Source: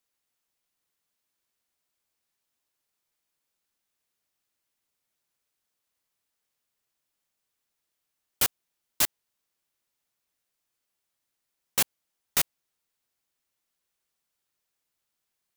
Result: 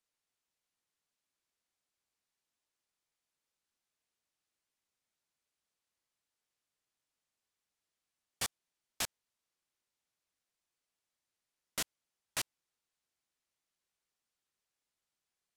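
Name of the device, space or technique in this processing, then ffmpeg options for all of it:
overflowing digital effects unit: -af "aeval=exprs='(mod(9.44*val(0)+1,2)-1)/9.44':c=same,lowpass=9.8k,volume=-5dB"

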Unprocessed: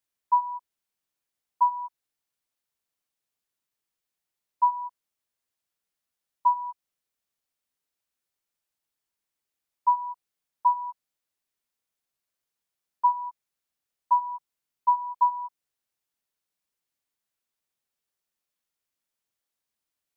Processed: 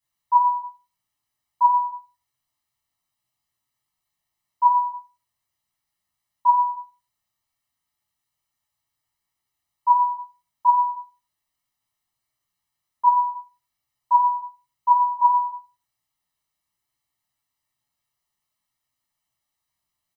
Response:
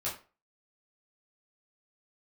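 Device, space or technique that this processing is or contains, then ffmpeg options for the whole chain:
microphone above a desk: -filter_complex "[0:a]aecho=1:1:1:0.86[a];[1:a]atrim=start_sample=2205[b];[a][b]afir=irnorm=-1:irlink=0"

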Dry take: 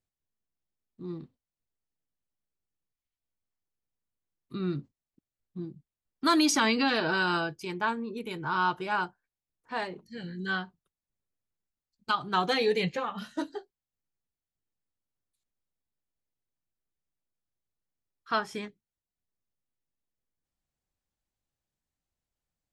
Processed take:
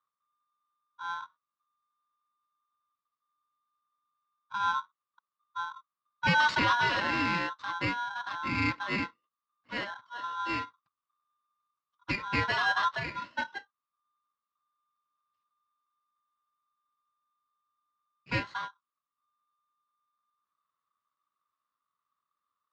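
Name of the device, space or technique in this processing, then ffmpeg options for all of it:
ring modulator pedal into a guitar cabinet: -af "aeval=exprs='val(0)*sgn(sin(2*PI*1200*n/s))':c=same,highpass=89,equalizer=f=110:t=q:w=4:g=3,equalizer=f=400:t=q:w=4:g=-9,equalizer=f=740:t=q:w=4:g=-8,equalizer=f=1.1k:t=q:w=4:g=9,equalizer=f=2.4k:t=q:w=4:g=-4,equalizer=f=3.3k:t=q:w=4:g=-5,lowpass=f=4k:w=0.5412,lowpass=f=4k:w=1.3066"

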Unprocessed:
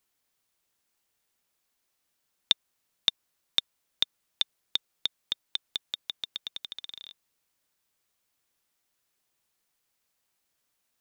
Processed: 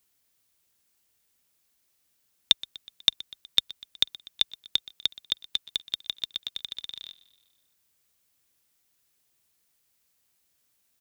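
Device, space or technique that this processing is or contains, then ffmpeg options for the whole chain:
smiley-face EQ: -af "highpass=45,lowshelf=f=84:g=7.5,equalizer=f=920:t=o:w=2:g=-4,highshelf=f=8.5k:g=4.5,aecho=1:1:123|246|369|492|615:0.1|0.06|0.036|0.0216|0.013,volume=3.5dB"

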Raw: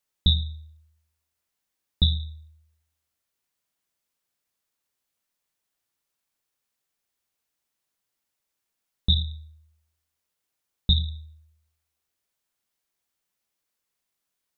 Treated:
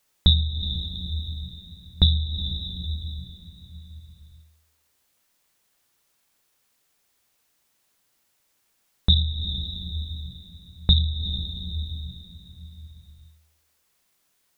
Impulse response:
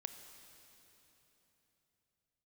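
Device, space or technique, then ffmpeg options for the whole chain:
ducked reverb: -filter_complex "[0:a]asplit=3[a][b][c];[1:a]atrim=start_sample=2205[d];[b][d]afir=irnorm=-1:irlink=0[e];[c]apad=whole_len=642908[f];[e][f]sidechaincompress=threshold=-41dB:ratio=6:attack=16:release=159,volume=11.5dB[g];[a][g]amix=inputs=2:normalize=0,volume=1.5dB"

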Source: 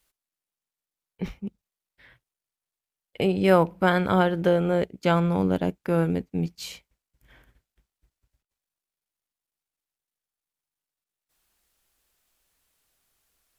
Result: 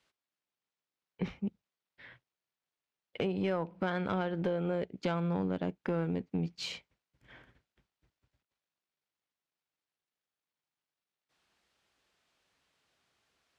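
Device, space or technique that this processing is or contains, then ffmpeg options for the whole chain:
AM radio: -af "highpass=100,lowpass=4.4k,acompressor=threshold=-30dB:ratio=6,asoftclip=type=tanh:threshold=-23.5dB,volume=1.5dB"

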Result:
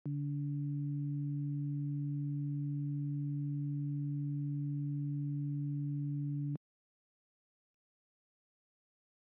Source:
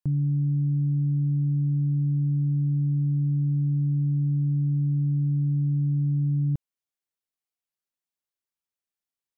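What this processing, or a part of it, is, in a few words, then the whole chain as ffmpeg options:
Bluetooth headset: -af "highpass=f=190:w=0.5412,highpass=f=190:w=1.3066,aresample=8000,aresample=44100,volume=-4dB" -ar 44100 -c:a sbc -b:a 64k

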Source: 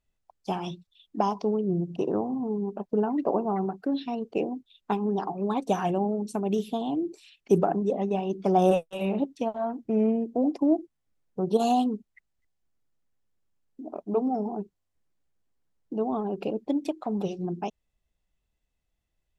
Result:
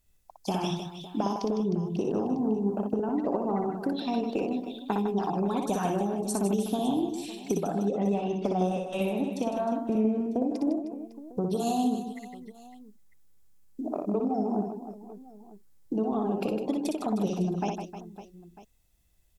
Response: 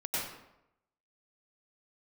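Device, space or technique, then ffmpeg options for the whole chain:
ASMR close-microphone chain: -filter_complex "[0:a]lowshelf=f=210:g=6,acompressor=threshold=-30dB:ratio=10,highshelf=f=6.9k:g=4.5,asettb=1/sr,asplit=3[a][b][c];[a]atrim=end=7.824[d];[b]atrim=start=7.82:end=9.02,asetpts=PTS-STARTPTS,afade=t=in:d=0.004:c=qsin,afade=t=out:st=1.196:d=0.004:c=qsin,lowpass=5.8k[e];[c]atrim=start=9.016[f];[d][e]acrossfade=d=0.004:c1=hsin:c2=qsin[g];[g][f]acrossfade=d=0.004:c1=qsin:c2=hsin,aemphasis=mode=production:type=cd,bandreject=f=2.9k:w=26,aecho=1:1:60|156|309.6|555.4|948.6:0.631|0.398|0.251|0.158|0.1,volume=4dB"

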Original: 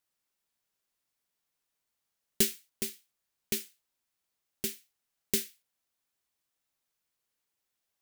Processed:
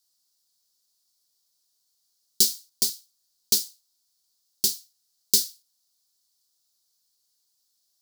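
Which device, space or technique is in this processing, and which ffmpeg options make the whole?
over-bright horn tweeter: -af "highshelf=f=3.3k:t=q:w=3:g=12,alimiter=limit=-2dB:level=0:latency=1:release=298,volume=-1.5dB"

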